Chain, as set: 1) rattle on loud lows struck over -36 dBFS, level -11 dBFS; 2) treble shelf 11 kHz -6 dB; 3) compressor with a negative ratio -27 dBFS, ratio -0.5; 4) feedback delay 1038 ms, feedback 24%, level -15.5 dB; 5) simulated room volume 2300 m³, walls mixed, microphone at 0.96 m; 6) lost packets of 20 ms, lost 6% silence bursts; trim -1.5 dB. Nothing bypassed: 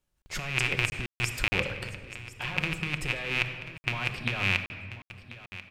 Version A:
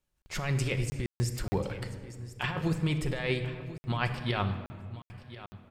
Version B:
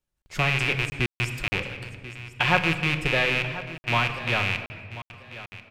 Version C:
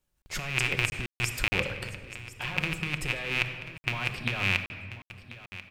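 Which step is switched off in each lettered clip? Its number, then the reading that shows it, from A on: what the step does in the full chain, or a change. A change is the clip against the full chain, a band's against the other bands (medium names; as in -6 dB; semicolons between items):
1, crest factor change -7.0 dB; 3, crest factor change -2.0 dB; 2, 8 kHz band +2.0 dB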